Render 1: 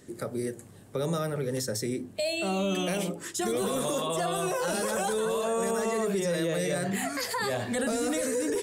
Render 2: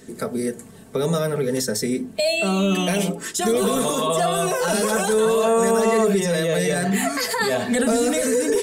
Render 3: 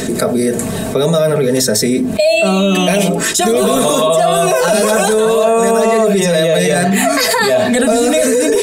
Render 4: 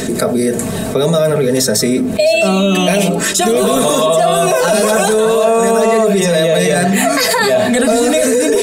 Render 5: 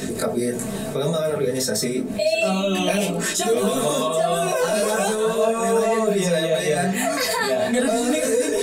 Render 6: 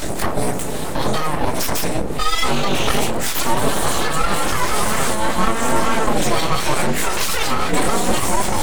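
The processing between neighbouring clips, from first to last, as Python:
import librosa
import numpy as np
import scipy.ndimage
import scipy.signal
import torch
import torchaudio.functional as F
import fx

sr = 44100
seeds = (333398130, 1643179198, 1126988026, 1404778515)

y1 = x + 0.57 * np.pad(x, (int(4.5 * sr / 1000.0), 0))[:len(x)]
y1 = y1 * 10.0 ** (7.0 / 20.0)
y2 = fx.small_body(y1, sr, hz=(640.0, 2500.0, 3800.0), ring_ms=45, db=9)
y2 = fx.env_flatten(y2, sr, amount_pct=70)
y2 = y2 * 10.0 ** (1.0 / 20.0)
y3 = y2 + 10.0 ** (-18.0 / 20.0) * np.pad(y2, (int(660 * sr / 1000.0), 0))[:len(y2)]
y4 = fx.detune_double(y3, sr, cents=12)
y4 = y4 * 10.0 ** (-5.0 / 20.0)
y5 = fx.octave_divider(y4, sr, octaves=2, level_db=-2.0)
y5 = np.abs(y5)
y5 = y5 * 10.0 ** (5.0 / 20.0)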